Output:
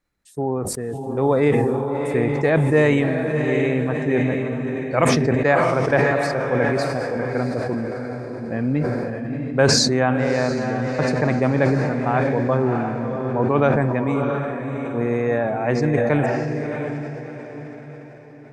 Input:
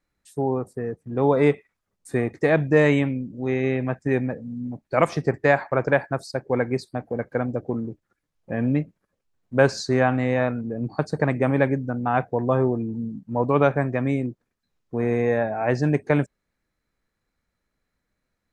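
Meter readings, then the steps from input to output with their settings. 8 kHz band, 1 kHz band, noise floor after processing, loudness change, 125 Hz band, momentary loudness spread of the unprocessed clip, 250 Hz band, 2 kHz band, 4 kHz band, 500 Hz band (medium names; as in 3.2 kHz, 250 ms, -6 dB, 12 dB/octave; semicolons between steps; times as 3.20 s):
+14.5 dB, +3.0 dB, -38 dBFS, +3.0 dB, +3.5 dB, 11 LU, +3.5 dB, +3.5 dB, +12.0 dB, +3.0 dB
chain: echo that smears into a reverb 674 ms, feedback 42%, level -5 dB; decay stretcher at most 24 dB/s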